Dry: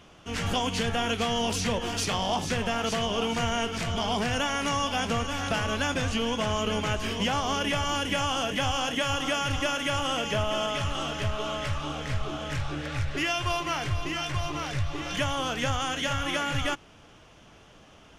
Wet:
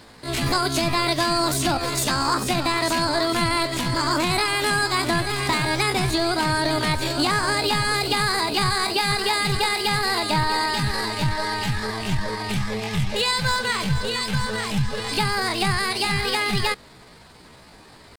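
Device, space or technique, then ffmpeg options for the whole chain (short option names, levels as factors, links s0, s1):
chipmunk voice: -af "asetrate=64194,aresample=44100,atempo=0.686977,volume=2"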